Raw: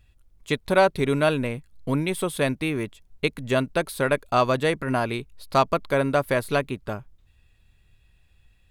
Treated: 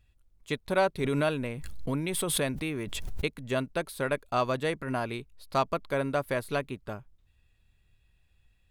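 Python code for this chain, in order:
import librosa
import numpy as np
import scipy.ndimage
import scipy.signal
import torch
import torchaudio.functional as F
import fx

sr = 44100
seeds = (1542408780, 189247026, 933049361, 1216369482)

y = fx.pre_swell(x, sr, db_per_s=27.0, at=(1.04, 3.27))
y = F.gain(torch.from_numpy(y), -7.0).numpy()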